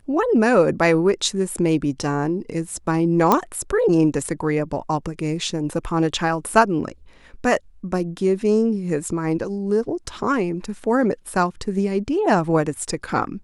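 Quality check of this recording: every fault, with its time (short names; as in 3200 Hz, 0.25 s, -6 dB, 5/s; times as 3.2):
3.32 pop -2 dBFS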